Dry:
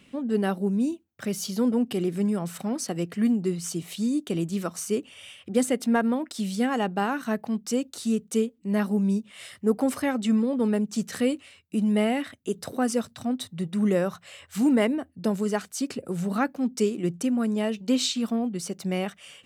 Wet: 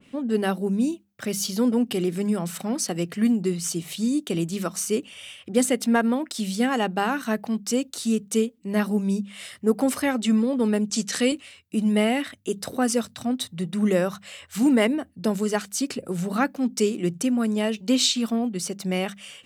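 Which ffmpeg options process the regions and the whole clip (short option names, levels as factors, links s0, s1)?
-filter_complex "[0:a]asettb=1/sr,asplit=3[s0][s1][s2];[s0]atrim=end=10.904[s3];[s1]atrim=start=10.9:end=11.32,asetpts=PTS-STARTPTS,afade=t=in:d=0.004:c=qsin,afade=t=out:st=0.416:d=0.004:c=qsin,highpass=160,lowpass=7100,highshelf=f=3900:g=10[s4];[s2]atrim=start=11.316[s5];[s3][s4]acrossfade=d=0.004:c1=hsin:c2=qsin[s6];[s6][s5]acrossfade=d=0.004:c1=qsin:c2=hsin,bandreject=f=50:t=h:w=6,bandreject=f=100:t=h:w=6,bandreject=f=150:t=h:w=6,bandreject=f=200:t=h:w=6,adynamicequalizer=threshold=0.01:dfrequency=1800:dqfactor=0.7:tfrequency=1800:tqfactor=0.7:attack=5:release=100:ratio=0.375:range=2:mode=boostabove:tftype=highshelf,volume=1.26"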